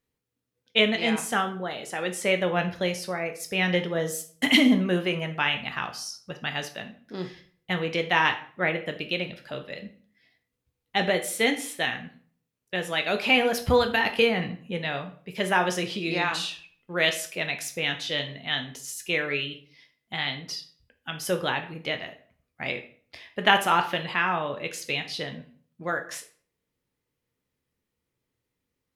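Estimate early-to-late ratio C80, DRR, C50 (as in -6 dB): 16.0 dB, 5.5 dB, 11.5 dB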